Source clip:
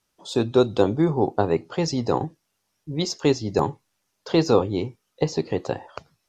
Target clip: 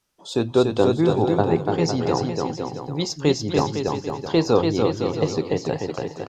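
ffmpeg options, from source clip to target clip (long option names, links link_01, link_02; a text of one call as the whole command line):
ffmpeg -i in.wav -filter_complex "[0:a]asplit=2[link_01][link_02];[link_02]aecho=0:1:290|507.5|670.6|793|884.7:0.631|0.398|0.251|0.158|0.1[link_03];[link_01][link_03]amix=inputs=2:normalize=0" out.wav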